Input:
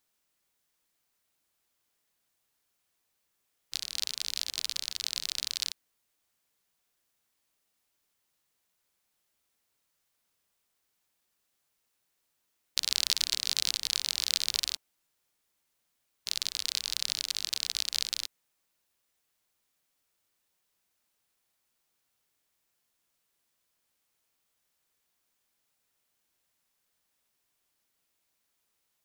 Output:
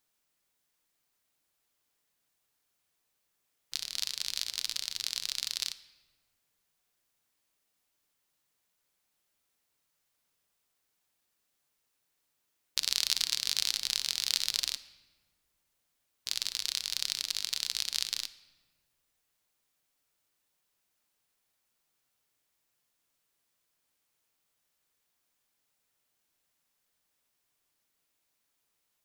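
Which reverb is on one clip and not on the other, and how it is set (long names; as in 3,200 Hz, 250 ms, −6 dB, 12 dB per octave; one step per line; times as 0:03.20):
rectangular room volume 1,300 cubic metres, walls mixed, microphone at 0.39 metres
level −1 dB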